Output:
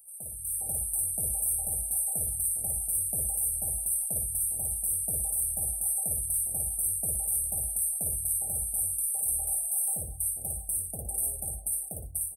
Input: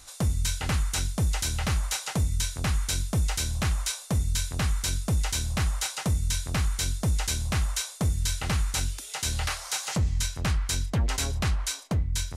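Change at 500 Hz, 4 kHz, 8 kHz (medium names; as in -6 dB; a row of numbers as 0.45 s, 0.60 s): -9.0 dB, under -40 dB, +6.0 dB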